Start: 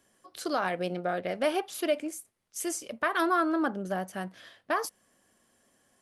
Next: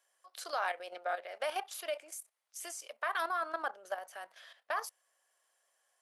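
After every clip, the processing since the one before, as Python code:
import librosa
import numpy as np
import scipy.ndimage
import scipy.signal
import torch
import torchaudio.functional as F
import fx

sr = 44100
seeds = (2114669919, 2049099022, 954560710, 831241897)

y = scipy.signal.sosfilt(scipy.signal.butter(4, 600.0, 'highpass', fs=sr, output='sos'), x)
y = fx.level_steps(y, sr, step_db=11)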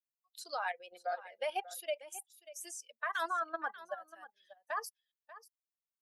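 y = fx.bin_expand(x, sr, power=2.0)
y = y + 10.0 ** (-16.0 / 20.0) * np.pad(y, (int(589 * sr / 1000.0), 0))[:len(y)]
y = y * librosa.db_to_amplitude(2.5)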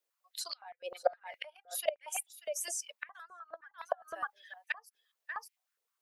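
y = fx.gate_flip(x, sr, shuts_db=-30.0, range_db=-29)
y = fx.filter_held_highpass(y, sr, hz=9.7, low_hz=460.0, high_hz=2300.0)
y = y * librosa.db_to_amplitude(8.0)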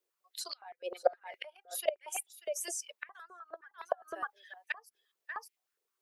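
y = fx.peak_eq(x, sr, hz=380.0, db=13.5, octaves=0.55)
y = y * librosa.db_to_amplitude(-1.0)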